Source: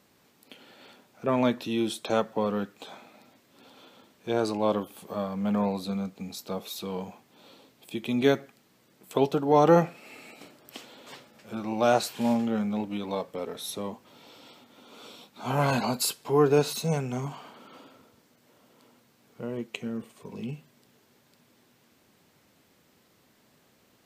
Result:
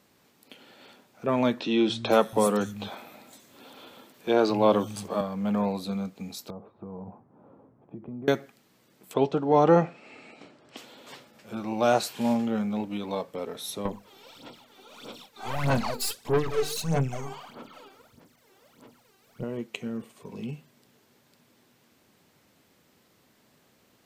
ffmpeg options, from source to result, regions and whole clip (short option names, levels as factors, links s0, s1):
-filter_complex "[0:a]asettb=1/sr,asplit=3[s0][s1][s2];[s0]atrim=end=1.604[s3];[s1]atrim=start=1.6:end=5.21,asetpts=PTS-STARTPTS,afade=t=in:d=0.004:c=qsin,afade=t=out:st=3.606:d=0.004:c=qsin,highshelf=f=8100:g=4,acontrast=30,acrossover=split=150|5700[s4][s5][s6];[s4]adelay=230[s7];[s6]adelay=510[s8];[s7][s5][s8]amix=inputs=3:normalize=0,atrim=end_sample=159201[s9];[s2]atrim=start=5.206[s10];[s3][s9]acrossfade=d=0.004:c1=hsin:c2=qsin[s11];[s11][s10]acrossfade=d=0.004:c1=qsin:c2=hsin,asettb=1/sr,asplit=3[s12][s13][s14];[s12]atrim=end=6.504[s15];[s13]atrim=start=6.5:end=8.28,asetpts=PTS-STARTPTS,afade=t=in:d=0.004:c=qsin,afade=t=out:st=1.776:d=0.004:c=qsin,equalizer=f=94:t=o:w=1.9:g=9,acompressor=threshold=0.0158:ratio=6:attack=3.2:release=140:knee=1:detection=peak,lowpass=f=1200:w=0.5412,lowpass=f=1200:w=1.3066[s16];[s14]atrim=start=8.276[s17];[s15][s16]acrossfade=d=0.004:c1=hsin:c2=qsin[s18];[s18][s17]acrossfade=d=0.004:c1=qsin:c2=hsin,asettb=1/sr,asplit=3[s19][s20][s21];[s19]atrim=end=9.144[s22];[s20]atrim=start=9.14:end=10.77,asetpts=PTS-STARTPTS,afade=t=in:d=0.004:c=qsin,afade=t=out:st=1.626:d=0.004:c=qsin,lowpass=f=8500:w=0.5412,lowpass=f=8500:w=1.3066,aemphasis=mode=reproduction:type=50kf[s23];[s21]atrim=start=10.766[s24];[s22][s23]acrossfade=d=0.004:c1=hsin:c2=qsin[s25];[s25][s24]acrossfade=d=0.004:c1=qsin:c2=hsin,asettb=1/sr,asplit=3[s26][s27][s28];[s26]atrim=end=13.854[s29];[s27]atrim=start=13.85:end=19.44,asetpts=PTS-STARTPTS,afade=t=in:d=0.004:c=qsin,afade=t=out:st=5.586:d=0.004:c=qsin,bandreject=f=50:t=h:w=6,bandreject=f=100:t=h:w=6,bandreject=f=150:t=h:w=6,bandreject=f=200:t=h:w=6,bandreject=f=250:t=h:w=6,bandreject=f=300:t=h:w=6,bandreject=f=350:t=h:w=6,bandreject=f=400:t=h:w=6,bandreject=f=450:t=h:w=6,bandreject=f=500:t=h:w=6,aeval=exprs='(tanh(31.6*val(0)+0.35)-tanh(0.35))/31.6':c=same,aphaser=in_gain=1:out_gain=1:delay=2.6:decay=0.73:speed=1.6:type=sinusoidal[s30];[s28]atrim=start=19.436[s31];[s29][s30]acrossfade=d=0.004:c1=hsin:c2=qsin[s32];[s32][s31]acrossfade=d=0.004:c1=qsin:c2=hsin"